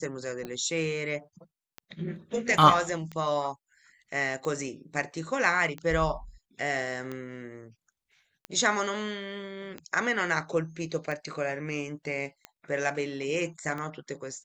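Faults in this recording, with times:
tick 45 rpm -23 dBFS

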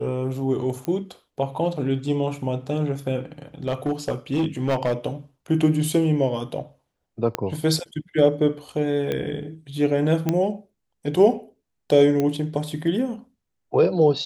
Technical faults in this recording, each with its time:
0.85 s: pop -15 dBFS
3.68–4.94 s: clipped -17.5 dBFS
7.35 s: pop -8 dBFS
9.12 s: pop -14 dBFS
10.29 s: pop -9 dBFS
12.20 s: pop -12 dBFS

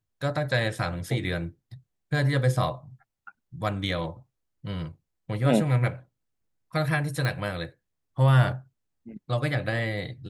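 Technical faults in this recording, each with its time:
7.25 s: pop -16 dBFS

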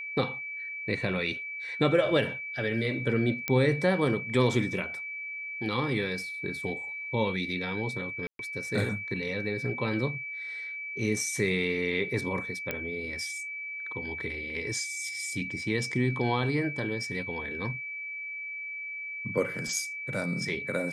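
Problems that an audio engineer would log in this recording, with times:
whine 2.3 kHz -35 dBFS
3.48 s: pop -13 dBFS
8.27–8.39 s: dropout 122 ms
12.71 s: pop -16 dBFS

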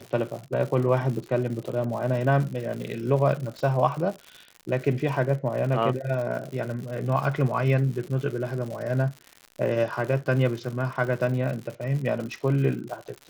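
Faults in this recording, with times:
crackle 140 per s -33 dBFS

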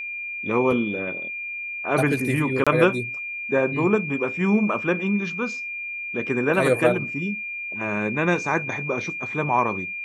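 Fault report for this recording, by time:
whine 2.4 kHz -29 dBFS
2.64–2.67 s: dropout 26 ms

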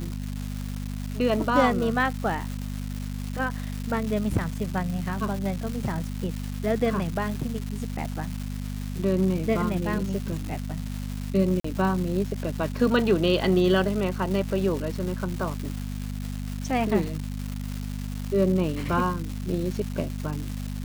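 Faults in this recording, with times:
crackle 520 per s -31 dBFS
hum 50 Hz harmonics 5 -32 dBFS
11.60–11.64 s: dropout 44 ms

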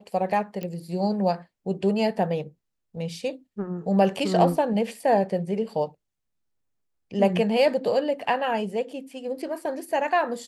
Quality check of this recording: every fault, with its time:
0.63 s: pop -19 dBFS

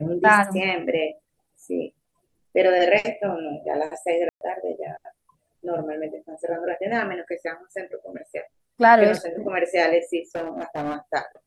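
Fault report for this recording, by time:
4.29–4.41 s: dropout 121 ms
10.35–10.94 s: clipped -24 dBFS

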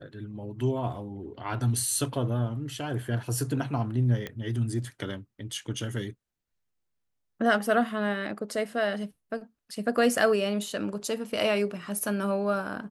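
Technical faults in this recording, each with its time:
4.27 s: pop -20 dBFS

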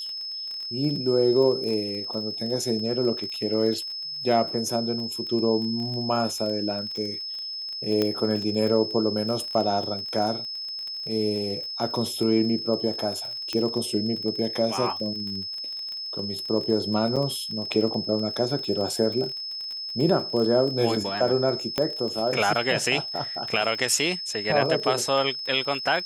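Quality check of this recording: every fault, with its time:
crackle 27 per s -31 dBFS
whine 5.2 kHz -31 dBFS
8.02 s: pop -11 dBFS
13.53 s: pop -15 dBFS
17.16–17.17 s: dropout 6 ms
21.78 s: pop -10 dBFS

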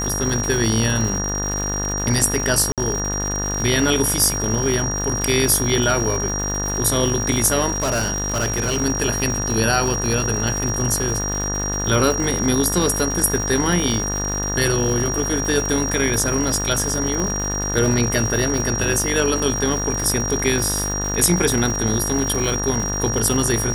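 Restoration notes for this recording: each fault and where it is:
buzz 50 Hz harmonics 37 -26 dBFS
crackle 220 per s -24 dBFS
whine 5.7 kHz -24 dBFS
2.72–2.78 s: dropout 57 ms
7.74–8.79 s: clipped -16 dBFS
17.20 s: pop

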